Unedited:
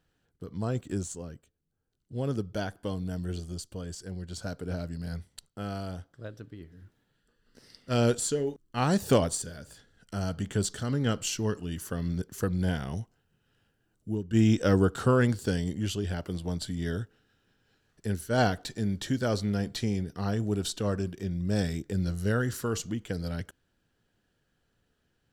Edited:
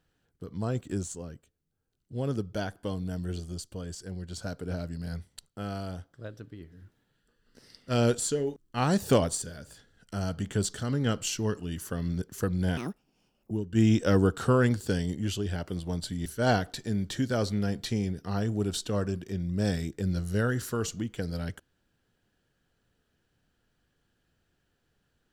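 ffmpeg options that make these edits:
-filter_complex "[0:a]asplit=4[s0][s1][s2][s3];[s0]atrim=end=12.774[s4];[s1]atrim=start=12.77:end=14.09,asetpts=PTS-STARTPTS,asetrate=78939,aresample=44100[s5];[s2]atrim=start=14.086:end=16.842[s6];[s3]atrim=start=18.168[s7];[s4][s5]acrossfade=d=0.004:c1=hsin:c2=hsin[s8];[s8][s6]acrossfade=d=0.004:c1=hsin:c2=hsin[s9];[s9][s7]acrossfade=d=0.004:c1=hsin:c2=hsin"

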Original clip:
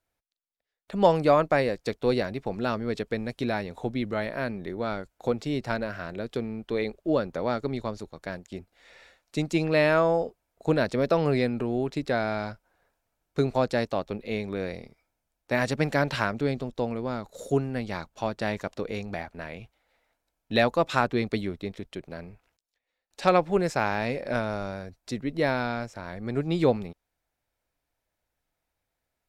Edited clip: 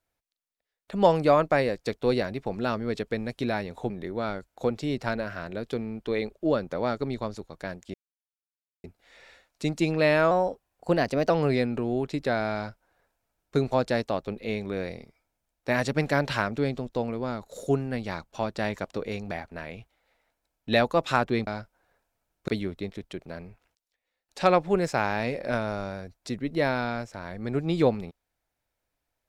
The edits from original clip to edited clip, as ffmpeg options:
-filter_complex "[0:a]asplit=7[s0][s1][s2][s3][s4][s5][s6];[s0]atrim=end=3.902[s7];[s1]atrim=start=4.528:end=8.57,asetpts=PTS-STARTPTS,afade=t=out:st=4.038:d=0.004:c=hsin,apad=pad_dur=0.9[s8];[s2]atrim=start=8.57:end=10.044,asetpts=PTS-STARTPTS,afade=t=in:d=0.004:c=hsin[s9];[s3]atrim=start=10.04:end=11.13,asetpts=PTS-STARTPTS,asetrate=48510,aresample=44100,atrim=end_sample=43699,asetpts=PTS-STARTPTS[s10];[s4]atrim=start=11.126:end=21.302[s11];[s5]atrim=start=12.378:end=13.392[s12];[s6]atrim=start=21.298[s13];[s8][s9]concat=n=2:v=0:a=1[s14];[s7][s14]acrossfade=d=0.004:c1=hsin:c2=hsin[s15];[s15][s10]acrossfade=d=0.004:c1=hsin:c2=hsin[s16];[s16][s11]acrossfade=d=0.004:c1=hsin:c2=hsin[s17];[s17][s12]acrossfade=d=0.004:c1=hsin:c2=hsin[s18];[s18][s13]acrossfade=d=0.004:c1=hsin:c2=hsin"

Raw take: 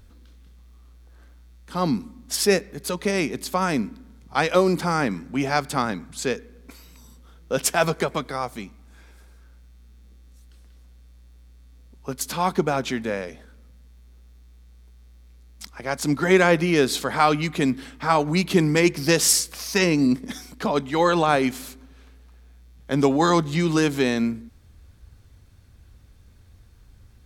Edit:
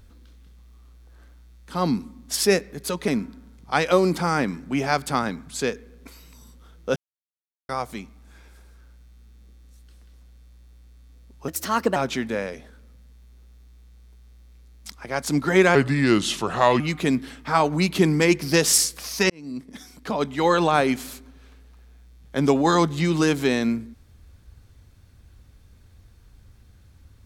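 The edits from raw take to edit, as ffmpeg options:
-filter_complex "[0:a]asplit=9[s0][s1][s2][s3][s4][s5][s6][s7][s8];[s0]atrim=end=3.082[s9];[s1]atrim=start=3.708:end=7.59,asetpts=PTS-STARTPTS,afade=t=out:st=3.878:d=0.004:c=hsin[s10];[s2]atrim=start=7.59:end=8.32,asetpts=PTS-STARTPTS,volume=0[s11];[s3]atrim=start=8.32:end=12.114,asetpts=PTS-STARTPTS,afade=t=in:d=0.004:c=hsin[s12];[s4]atrim=start=12.11:end=12.71,asetpts=PTS-STARTPTS,asetrate=55125,aresample=44100[s13];[s5]atrim=start=12.706:end=16.504[s14];[s6]atrim=start=16.5:end=17.35,asetpts=PTS-STARTPTS,asetrate=35721,aresample=44100[s15];[s7]atrim=start=17.346:end=19.85,asetpts=PTS-STARTPTS,afade=t=out:st=2.5:d=0.004:c=hsin[s16];[s8]atrim=start=19.85,asetpts=PTS-STARTPTS,afade=t=in:d=1.11[s17];[s10][s11][s12]concat=n=3:v=0:a=1[s18];[s9][s18]acrossfade=d=0.004:c1=hsin:c2=hsin[s19];[s19][s13]acrossfade=d=0.004:c1=hsin:c2=hsin[s20];[s20][s14]acrossfade=d=0.004:c1=hsin:c2=hsin[s21];[s21][s15]acrossfade=d=0.004:c1=hsin:c2=hsin[s22];[s16][s17]concat=n=2:v=0:a=1[s23];[s22][s23]acrossfade=d=0.004:c1=hsin:c2=hsin"

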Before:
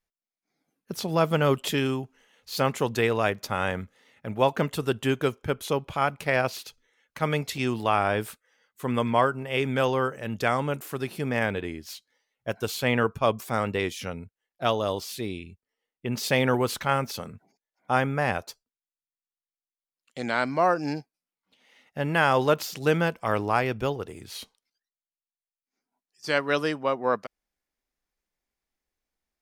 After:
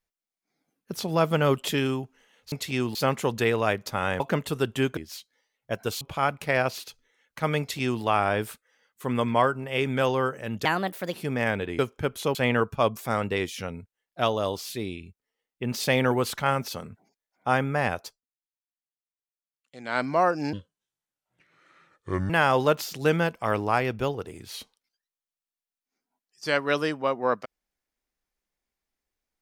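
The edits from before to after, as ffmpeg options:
-filter_complex "[0:a]asplit=14[s0][s1][s2][s3][s4][s5][s6][s7][s8][s9][s10][s11][s12][s13];[s0]atrim=end=2.522[s14];[s1]atrim=start=7.388:end=7.822[s15];[s2]atrim=start=2.518:end=3.772[s16];[s3]atrim=start=4.468:end=5.242[s17];[s4]atrim=start=11.738:end=12.782[s18];[s5]atrim=start=5.798:end=10.444[s19];[s6]atrim=start=10.44:end=11.09,asetpts=PTS-STARTPTS,asetrate=58653,aresample=44100[s20];[s7]atrim=start=11.086:end=11.742[s21];[s8]atrim=start=5.238:end=5.802[s22];[s9]atrim=start=12.778:end=18.64,asetpts=PTS-STARTPTS,afade=t=out:st=5.712:d=0.15:silence=0.266073[s23];[s10]atrim=start=18.64:end=20.27,asetpts=PTS-STARTPTS,volume=0.266[s24];[s11]atrim=start=20.27:end=20.964,asetpts=PTS-STARTPTS,afade=t=in:d=0.15:silence=0.266073[s25];[s12]atrim=start=20.96:end=22.11,asetpts=PTS-STARTPTS,asetrate=28665,aresample=44100,atrim=end_sample=78023,asetpts=PTS-STARTPTS[s26];[s13]atrim=start=22.106[s27];[s14][s15]acrossfade=d=0.004:c1=hsin:c2=hsin[s28];[s28][s16]acrossfade=d=0.004:c1=hsin:c2=hsin[s29];[s29][s17]acrossfade=d=0.004:c1=hsin:c2=hsin[s30];[s30][s18]acrossfade=d=0.004:c1=hsin:c2=hsin[s31];[s31][s19]acrossfade=d=0.004:c1=hsin:c2=hsin[s32];[s32][s20]acrossfade=d=0.004:c1=hsin:c2=hsin[s33];[s33][s21]acrossfade=d=0.004:c1=hsin:c2=hsin[s34];[s34][s22]acrossfade=d=0.004:c1=hsin:c2=hsin[s35];[s23][s24][s25]concat=n=3:v=0:a=1[s36];[s35][s36]acrossfade=d=0.004:c1=hsin:c2=hsin[s37];[s37][s26]acrossfade=d=0.004:c1=hsin:c2=hsin[s38];[s38][s27]acrossfade=d=0.004:c1=hsin:c2=hsin"

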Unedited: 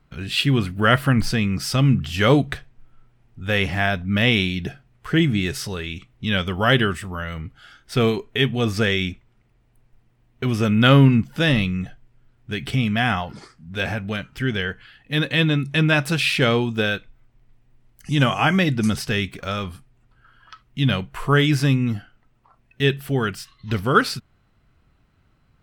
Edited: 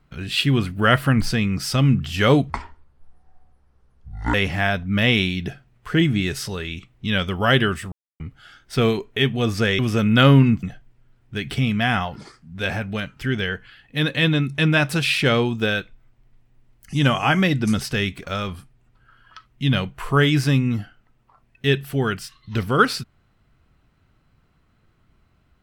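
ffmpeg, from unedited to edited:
-filter_complex "[0:a]asplit=7[s0][s1][s2][s3][s4][s5][s6];[s0]atrim=end=2.504[s7];[s1]atrim=start=2.5:end=3.53,asetpts=PTS-STARTPTS,asetrate=24696,aresample=44100,atrim=end_sample=81112,asetpts=PTS-STARTPTS[s8];[s2]atrim=start=3.526:end=7.11,asetpts=PTS-STARTPTS,afade=t=out:st=3.58:d=0.004:c=hsin[s9];[s3]atrim=start=7.11:end=7.39,asetpts=PTS-STARTPTS,volume=0[s10];[s4]atrim=start=7.39:end=8.982,asetpts=PTS-STARTPTS,afade=t=in:d=0.004:c=hsin[s11];[s5]atrim=start=10.448:end=11.292[s12];[s6]atrim=start=11.788[s13];[s7][s8]acrossfade=d=0.004:c1=hsin:c2=hsin[s14];[s9][s10][s11]concat=n=3:v=0:a=1[s15];[s14][s15]acrossfade=d=0.004:c1=hsin:c2=hsin[s16];[s16][s12]acrossfade=d=0.004:c1=hsin:c2=hsin[s17];[s17][s13]acrossfade=d=0.004:c1=hsin:c2=hsin"

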